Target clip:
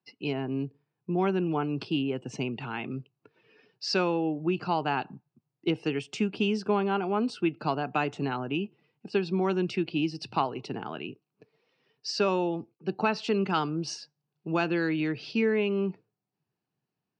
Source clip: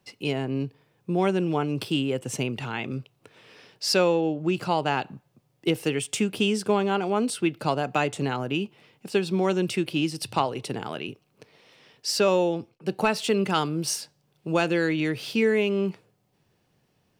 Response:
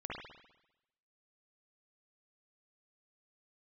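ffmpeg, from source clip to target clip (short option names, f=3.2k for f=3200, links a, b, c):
-af "afftdn=nr=14:nf=-48,highpass=140,equalizer=f=540:t=q:w=4:g=-9,equalizer=f=2k:t=q:w=4:g=-5,equalizer=f=3.4k:t=q:w=4:g=-8,lowpass=f=5k:w=0.5412,lowpass=f=5k:w=1.3066,volume=-1.5dB"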